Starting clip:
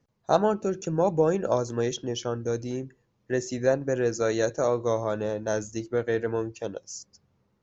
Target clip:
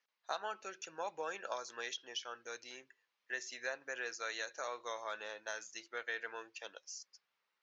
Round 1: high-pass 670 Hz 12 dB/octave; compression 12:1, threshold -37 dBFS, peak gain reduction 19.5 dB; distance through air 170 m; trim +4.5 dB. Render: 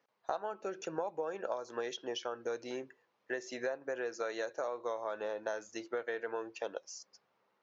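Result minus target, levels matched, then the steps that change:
2 kHz band -5.5 dB
change: high-pass 2 kHz 12 dB/octave

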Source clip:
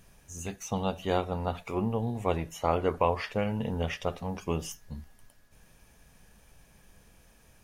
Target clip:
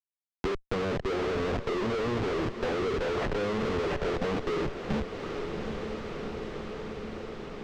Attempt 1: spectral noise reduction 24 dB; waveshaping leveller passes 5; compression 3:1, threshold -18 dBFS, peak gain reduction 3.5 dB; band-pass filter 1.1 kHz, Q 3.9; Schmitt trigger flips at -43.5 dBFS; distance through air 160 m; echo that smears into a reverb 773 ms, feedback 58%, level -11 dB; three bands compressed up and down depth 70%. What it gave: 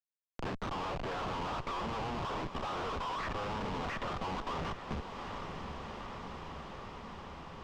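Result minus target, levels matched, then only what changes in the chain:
1 kHz band +7.0 dB; compression: peak gain reduction +3.5 dB
change: band-pass filter 400 Hz, Q 3.9; remove: compression 3:1, threshold -18 dBFS, peak gain reduction 3.5 dB

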